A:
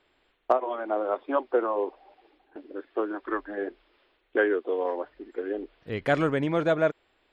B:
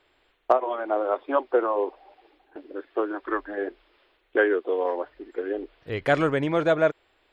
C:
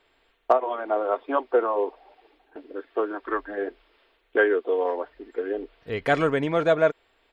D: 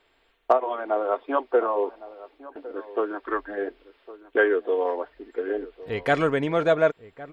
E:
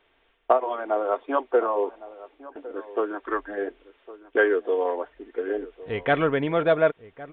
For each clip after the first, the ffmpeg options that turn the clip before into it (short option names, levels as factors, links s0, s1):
-af "equalizer=f=210:w=2.2:g=-7,volume=1.41"
-af "aecho=1:1:4.4:0.3"
-filter_complex "[0:a]asplit=2[s0][s1];[s1]adelay=1108,volume=0.141,highshelf=f=4000:g=-24.9[s2];[s0][s2]amix=inputs=2:normalize=0"
-af "aresample=8000,aresample=44100"